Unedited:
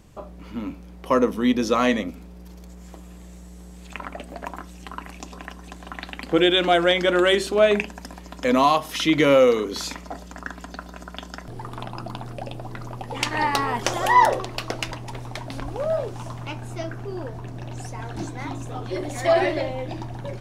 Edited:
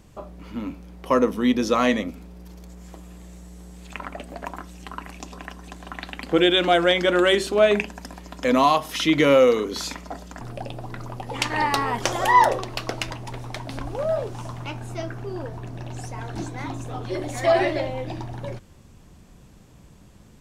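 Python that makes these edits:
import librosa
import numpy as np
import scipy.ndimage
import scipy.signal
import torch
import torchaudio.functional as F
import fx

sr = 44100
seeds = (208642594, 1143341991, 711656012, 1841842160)

y = fx.edit(x, sr, fx.cut(start_s=10.41, length_s=1.81), tone=tone)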